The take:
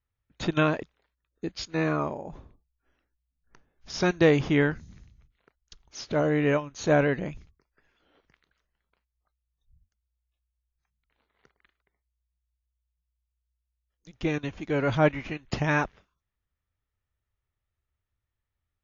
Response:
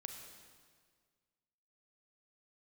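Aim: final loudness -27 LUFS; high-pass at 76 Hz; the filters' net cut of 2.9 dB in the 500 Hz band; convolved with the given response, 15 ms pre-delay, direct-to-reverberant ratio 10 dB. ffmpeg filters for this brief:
-filter_complex "[0:a]highpass=76,equalizer=f=500:t=o:g=-3.5,asplit=2[a][b];[1:a]atrim=start_sample=2205,adelay=15[c];[b][c]afir=irnorm=-1:irlink=0,volume=-6.5dB[d];[a][d]amix=inputs=2:normalize=0,volume=1dB"

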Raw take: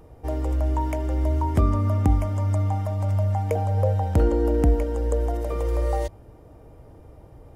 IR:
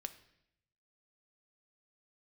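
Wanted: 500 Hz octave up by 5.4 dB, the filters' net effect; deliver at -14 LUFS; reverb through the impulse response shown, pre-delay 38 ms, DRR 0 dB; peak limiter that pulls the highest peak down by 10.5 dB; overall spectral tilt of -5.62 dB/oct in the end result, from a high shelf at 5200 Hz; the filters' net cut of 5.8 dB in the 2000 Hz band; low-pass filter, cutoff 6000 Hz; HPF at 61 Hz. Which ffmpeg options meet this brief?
-filter_complex "[0:a]highpass=61,lowpass=6k,equalizer=f=500:t=o:g=6.5,equalizer=f=2k:t=o:g=-8.5,highshelf=f=5.2k:g=6.5,alimiter=limit=-17.5dB:level=0:latency=1,asplit=2[a][b];[1:a]atrim=start_sample=2205,adelay=38[c];[b][c]afir=irnorm=-1:irlink=0,volume=3dB[d];[a][d]amix=inputs=2:normalize=0,volume=9.5dB"

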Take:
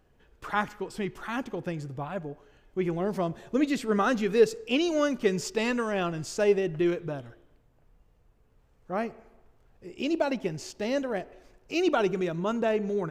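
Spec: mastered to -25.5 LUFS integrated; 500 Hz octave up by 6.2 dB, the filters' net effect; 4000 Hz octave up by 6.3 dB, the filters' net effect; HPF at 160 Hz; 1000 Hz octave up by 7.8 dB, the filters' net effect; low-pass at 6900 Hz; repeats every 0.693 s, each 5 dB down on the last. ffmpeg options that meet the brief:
-af "highpass=160,lowpass=6.9k,equalizer=f=500:t=o:g=6,equalizer=f=1k:t=o:g=8,equalizer=f=4k:t=o:g=8.5,aecho=1:1:693|1386|2079|2772|3465|4158|4851:0.562|0.315|0.176|0.0988|0.0553|0.031|0.0173,volume=-2.5dB"

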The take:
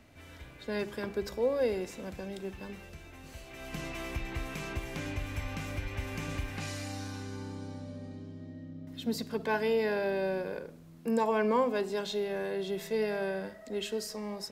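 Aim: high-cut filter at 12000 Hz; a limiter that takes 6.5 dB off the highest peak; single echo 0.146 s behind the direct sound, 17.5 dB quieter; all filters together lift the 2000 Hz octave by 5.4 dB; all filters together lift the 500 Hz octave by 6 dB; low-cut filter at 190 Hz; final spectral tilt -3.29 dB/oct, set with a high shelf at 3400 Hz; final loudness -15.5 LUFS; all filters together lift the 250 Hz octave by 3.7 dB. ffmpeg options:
-af "highpass=190,lowpass=12k,equalizer=f=250:t=o:g=5,equalizer=f=500:t=o:g=5.5,equalizer=f=2k:t=o:g=5.5,highshelf=f=3.4k:g=4,alimiter=limit=-18dB:level=0:latency=1,aecho=1:1:146:0.133,volume=15dB"

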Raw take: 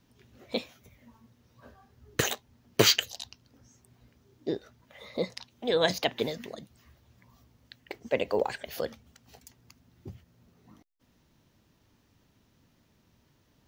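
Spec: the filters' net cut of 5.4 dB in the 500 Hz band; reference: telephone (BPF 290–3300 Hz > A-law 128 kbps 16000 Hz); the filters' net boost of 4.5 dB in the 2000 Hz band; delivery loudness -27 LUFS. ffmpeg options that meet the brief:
-af "highpass=290,lowpass=3.3k,equalizer=f=500:t=o:g=-6,equalizer=f=2k:t=o:g=6.5,volume=5dB" -ar 16000 -c:a pcm_alaw

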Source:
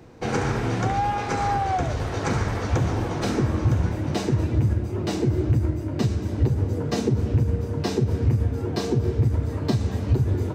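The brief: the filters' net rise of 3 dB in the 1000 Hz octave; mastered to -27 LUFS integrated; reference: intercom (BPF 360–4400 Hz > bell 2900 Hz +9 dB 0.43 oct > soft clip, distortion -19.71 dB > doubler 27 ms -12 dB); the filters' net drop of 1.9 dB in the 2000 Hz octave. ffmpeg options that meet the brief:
-filter_complex "[0:a]highpass=360,lowpass=4.4k,equalizer=f=1k:t=o:g=5.5,equalizer=f=2k:t=o:g=-6.5,equalizer=f=2.9k:t=o:w=0.43:g=9,asoftclip=threshold=-17dB,asplit=2[a][b];[b]adelay=27,volume=-12dB[c];[a][c]amix=inputs=2:normalize=0,volume=2.5dB"

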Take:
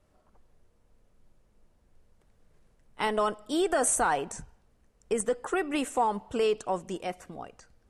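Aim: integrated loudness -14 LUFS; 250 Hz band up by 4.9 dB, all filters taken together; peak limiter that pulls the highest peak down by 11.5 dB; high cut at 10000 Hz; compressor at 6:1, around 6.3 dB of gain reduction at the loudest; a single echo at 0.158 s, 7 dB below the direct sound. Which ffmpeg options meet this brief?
-af "lowpass=10k,equalizer=f=250:t=o:g=6.5,acompressor=threshold=-27dB:ratio=6,alimiter=level_in=5dB:limit=-24dB:level=0:latency=1,volume=-5dB,aecho=1:1:158:0.447,volume=24dB"

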